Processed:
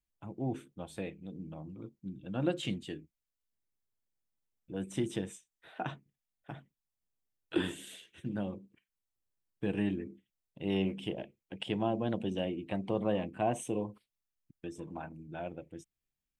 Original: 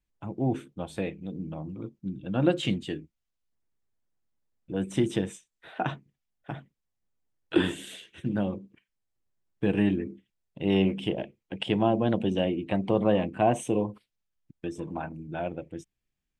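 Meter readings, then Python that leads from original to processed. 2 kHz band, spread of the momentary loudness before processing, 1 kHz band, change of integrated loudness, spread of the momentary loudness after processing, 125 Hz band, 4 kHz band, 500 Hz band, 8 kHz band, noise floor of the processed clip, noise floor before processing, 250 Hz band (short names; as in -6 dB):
-7.5 dB, 16 LU, -8.0 dB, -8.0 dB, 16 LU, -8.0 dB, -7.0 dB, -8.0 dB, -4.0 dB, under -85 dBFS, -83 dBFS, -8.0 dB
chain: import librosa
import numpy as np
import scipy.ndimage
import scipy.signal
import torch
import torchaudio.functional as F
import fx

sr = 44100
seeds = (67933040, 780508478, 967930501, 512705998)

y = fx.high_shelf(x, sr, hz=7100.0, db=7.5)
y = y * 10.0 ** (-8.0 / 20.0)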